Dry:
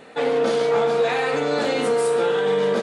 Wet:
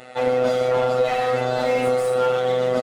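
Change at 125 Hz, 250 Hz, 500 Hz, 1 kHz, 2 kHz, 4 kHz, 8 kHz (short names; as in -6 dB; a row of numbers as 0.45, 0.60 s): +4.0, -2.5, 0.0, +2.0, -2.5, -3.0, -4.0 dB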